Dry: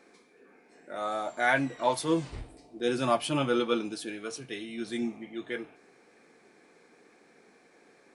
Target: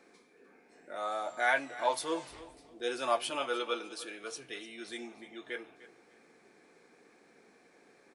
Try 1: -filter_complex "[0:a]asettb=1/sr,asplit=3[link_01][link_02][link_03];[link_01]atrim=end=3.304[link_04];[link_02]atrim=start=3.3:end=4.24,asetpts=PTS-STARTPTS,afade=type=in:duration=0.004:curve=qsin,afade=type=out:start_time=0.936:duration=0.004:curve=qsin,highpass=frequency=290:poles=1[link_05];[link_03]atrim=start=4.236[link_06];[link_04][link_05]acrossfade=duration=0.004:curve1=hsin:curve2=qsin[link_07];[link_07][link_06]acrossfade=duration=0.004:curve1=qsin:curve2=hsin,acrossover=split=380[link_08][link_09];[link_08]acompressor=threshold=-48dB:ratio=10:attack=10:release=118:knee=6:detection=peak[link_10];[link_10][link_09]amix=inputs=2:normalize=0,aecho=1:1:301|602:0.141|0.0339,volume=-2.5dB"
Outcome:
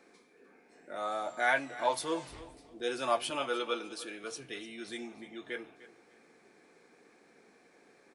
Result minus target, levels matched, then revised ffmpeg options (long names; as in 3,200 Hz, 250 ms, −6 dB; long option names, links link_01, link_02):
downward compressor: peak gain reduction −7.5 dB
-filter_complex "[0:a]asettb=1/sr,asplit=3[link_01][link_02][link_03];[link_01]atrim=end=3.304[link_04];[link_02]atrim=start=3.3:end=4.24,asetpts=PTS-STARTPTS,afade=type=in:duration=0.004:curve=qsin,afade=type=out:start_time=0.936:duration=0.004:curve=qsin,highpass=frequency=290:poles=1[link_05];[link_03]atrim=start=4.236[link_06];[link_04][link_05]acrossfade=duration=0.004:curve1=hsin:curve2=qsin[link_07];[link_07][link_06]acrossfade=duration=0.004:curve1=qsin:curve2=hsin,acrossover=split=380[link_08][link_09];[link_08]acompressor=threshold=-56.5dB:ratio=10:attack=10:release=118:knee=6:detection=peak[link_10];[link_10][link_09]amix=inputs=2:normalize=0,aecho=1:1:301|602:0.141|0.0339,volume=-2.5dB"